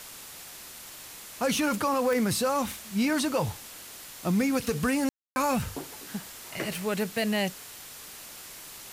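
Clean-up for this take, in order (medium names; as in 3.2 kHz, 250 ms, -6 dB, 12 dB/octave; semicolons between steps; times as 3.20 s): de-click; band-stop 7.2 kHz, Q 30; room tone fill 5.09–5.36 s; noise print and reduce 30 dB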